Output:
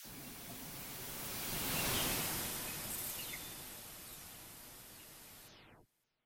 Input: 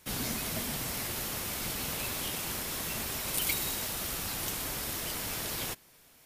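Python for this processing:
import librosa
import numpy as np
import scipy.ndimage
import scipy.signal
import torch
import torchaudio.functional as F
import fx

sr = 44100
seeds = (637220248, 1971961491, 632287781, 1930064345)

y = fx.spec_delay(x, sr, highs='early', ms=349)
y = fx.doppler_pass(y, sr, speed_mps=26, closest_m=7.2, pass_at_s=1.97)
y = fx.slew_limit(y, sr, full_power_hz=120.0)
y = y * 10.0 ** (1.5 / 20.0)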